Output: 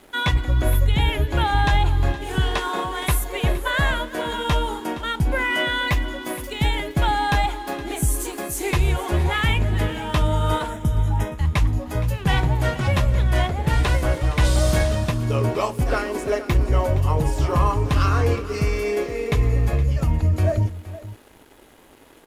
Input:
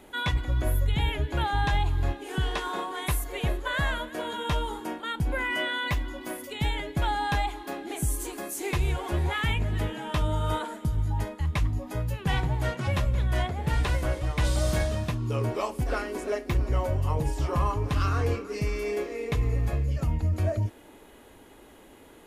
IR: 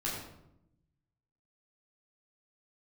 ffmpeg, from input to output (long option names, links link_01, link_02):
-filter_complex "[0:a]aeval=exprs='sgn(val(0))*max(abs(val(0))-0.00188,0)':channel_layout=same,asettb=1/sr,asplit=3[link_01][link_02][link_03];[link_01]atrim=end=10.704[link_04];[link_02]atrim=start=10.7:end=11.38,asetpts=PTS-STARTPTS,afade=type=in:duration=0.004:curve=qsin,afade=type=out:start_time=0.676:duration=0.004:curve=qsin,asuperstop=centerf=4500:order=4:qfactor=3.9[link_05];[link_03]atrim=start=11.376[link_06];[link_04][link_05]acrossfade=duration=0.004:curve1=hsin:curve2=qsin[link_07];[link_07][link_06]acrossfade=duration=0.004:curve1=qsin:curve2=hsin,aecho=1:1:468:0.168,volume=7dB"